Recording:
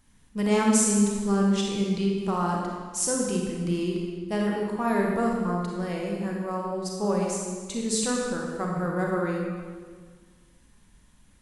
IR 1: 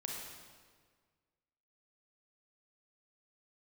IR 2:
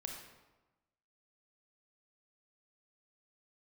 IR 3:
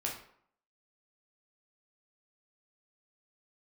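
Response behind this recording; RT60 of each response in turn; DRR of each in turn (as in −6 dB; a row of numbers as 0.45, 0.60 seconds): 1; 1.7, 1.1, 0.65 seconds; −1.5, 1.0, −2.0 decibels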